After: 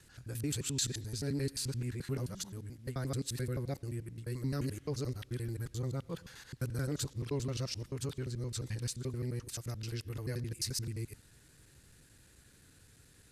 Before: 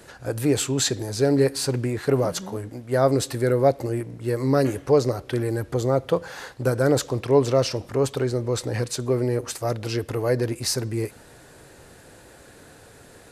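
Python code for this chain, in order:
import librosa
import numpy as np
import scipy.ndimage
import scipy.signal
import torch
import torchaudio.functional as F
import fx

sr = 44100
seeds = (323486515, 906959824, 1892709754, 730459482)

y = fx.local_reverse(x, sr, ms=87.0)
y = fx.tone_stack(y, sr, knobs='6-0-2')
y = y * 10.0 ** (5.0 / 20.0)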